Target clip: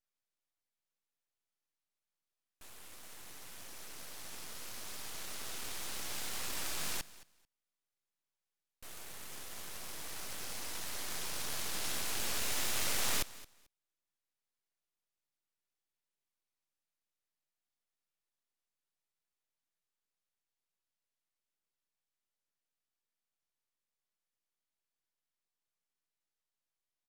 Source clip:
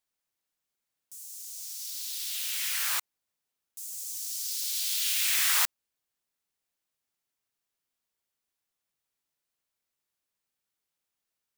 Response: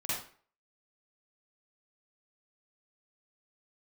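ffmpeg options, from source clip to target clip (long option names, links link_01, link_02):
-af "aecho=1:1:94|188:0.112|0.0191,asetrate=18846,aresample=44100,aeval=exprs='abs(val(0))':channel_layout=same,volume=-6.5dB"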